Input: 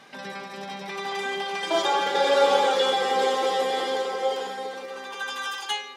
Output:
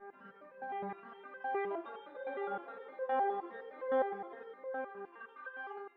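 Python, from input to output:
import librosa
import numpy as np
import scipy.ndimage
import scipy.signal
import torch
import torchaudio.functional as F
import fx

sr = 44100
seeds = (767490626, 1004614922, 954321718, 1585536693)

y = fx.rider(x, sr, range_db=3, speed_s=0.5)
y = fx.dmg_buzz(y, sr, base_hz=400.0, harmonics=4, level_db=-45.0, tilt_db=-4, odd_only=False)
y = scipy.signal.sosfilt(scipy.signal.butter(4, 1800.0, 'lowpass', fs=sr, output='sos'), y)
y = fx.peak_eq(y, sr, hz=240.0, db=2.5, octaves=0.77)
y = fx.resonator_held(y, sr, hz=9.7, low_hz=200.0, high_hz=520.0)
y = y * 10.0 ** (-2.0 / 20.0)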